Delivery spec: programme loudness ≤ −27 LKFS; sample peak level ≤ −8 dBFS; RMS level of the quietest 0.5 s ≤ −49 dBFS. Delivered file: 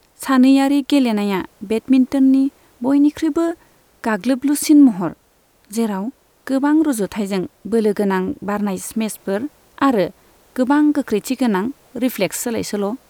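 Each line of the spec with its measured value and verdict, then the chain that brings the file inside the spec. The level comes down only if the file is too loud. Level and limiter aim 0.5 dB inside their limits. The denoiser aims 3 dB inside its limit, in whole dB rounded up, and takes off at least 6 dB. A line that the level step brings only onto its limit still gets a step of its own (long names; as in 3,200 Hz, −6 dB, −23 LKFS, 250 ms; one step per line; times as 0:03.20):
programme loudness −18.0 LKFS: out of spec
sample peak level −3.5 dBFS: out of spec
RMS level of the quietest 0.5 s −57 dBFS: in spec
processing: level −9.5 dB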